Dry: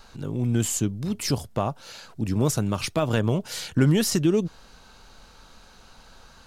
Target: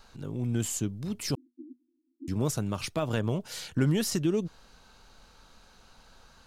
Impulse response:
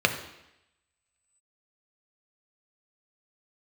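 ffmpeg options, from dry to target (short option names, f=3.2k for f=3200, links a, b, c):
-filter_complex "[0:a]asettb=1/sr,asplit=3[a][b][c];[a]atrim=end=1.354[d];[b]atrim=start=1.35:end=2.28,asetpts=PTS-STARTPTS,afade=t=in:d=0.004:c=qsin,afade=t=out:st=0.926:d=0.004:c=qsin,asuperpass=centerf=290:order=20:qfactor=2.8[e];[c]atrim=start=2.276[f];[d][e]acrossfade=d=0.004:c1=hsin:c2=qsin[g];[g][f]acrossfade=d=0.004:c1=qsin:c2=hsin,volume=-6dB"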